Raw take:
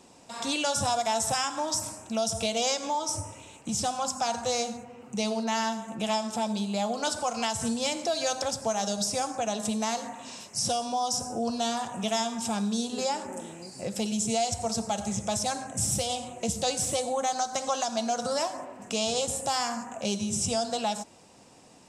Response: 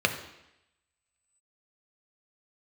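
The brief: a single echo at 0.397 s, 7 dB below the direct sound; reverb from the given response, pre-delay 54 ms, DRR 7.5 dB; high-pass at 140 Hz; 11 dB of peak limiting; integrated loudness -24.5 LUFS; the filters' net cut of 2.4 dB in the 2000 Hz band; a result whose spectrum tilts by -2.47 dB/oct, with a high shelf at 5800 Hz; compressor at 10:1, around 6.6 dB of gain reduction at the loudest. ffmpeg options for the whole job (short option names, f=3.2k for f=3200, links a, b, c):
-filter_complex "[0:a]highpass=140,equalizer=f=2k:t=o:g=-4.5,highshelf=f=5.8k:g=8,acompressor=threshold=-28dB:ratio=10,alimiter=level_in=3.5dB:limit=-24dB:level=0:latency=1,volume=-3.5dB,aecho=1:1:397:0.447,asplit=2[a][b];[1:a]atrim=start_sample=2205,adelay=54[c];[b][c]afir=irnorm=-1:irlink=0,volume=-21dB[d];[a][d]amix=inputs=2:normalize=0,volume=10.5dB"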